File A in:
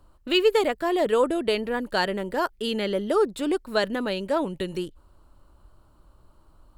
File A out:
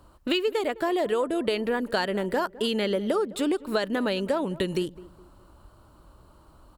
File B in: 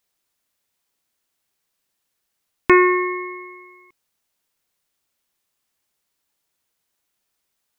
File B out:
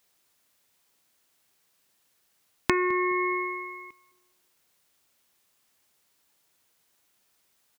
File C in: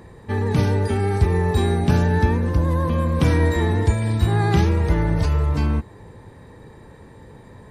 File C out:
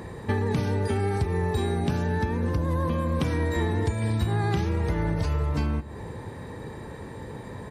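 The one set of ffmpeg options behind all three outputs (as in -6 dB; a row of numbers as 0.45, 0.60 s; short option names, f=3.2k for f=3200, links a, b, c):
-filter_complex "[0:a]highpass=f=61:p=1,acompressor=threshold=-28dB:ratio=12,asplit=2[a][b];[b]adelay=209,lowpass=f=1.1k:p=1,volume=-18dB,asplit=2[c][d];[d]adelay=209,lowpass=f=1.1k:p=1,volume=0.37,asplit=2[e][f];[f]adelay=209,lowpass=f=1.1k:p=1,volume=0.37[g];[c][e][g]amix=inputs=3:normalize=0[h];[a][h]amix=inputs=2:normalize=0,volume=6dB"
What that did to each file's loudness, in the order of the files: -2.0, -10.0, -6.5 LU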